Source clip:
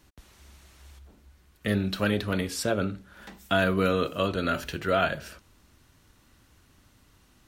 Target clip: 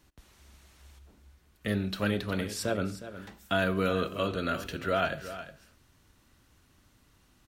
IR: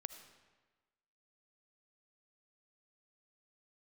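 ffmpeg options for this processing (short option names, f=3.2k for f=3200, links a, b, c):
-filter_complex "[0:a]aecho=1:1:362:0.224,asplit=2[a][b];[1:a]atrim=start_sample=2205,atrim=end_sample=6615[c];[b][c]afir=irnorm=-1:irlink=0,volume=-3dB[d];[a][d]amix=inputs=2:normalize=0,volume=-7dB"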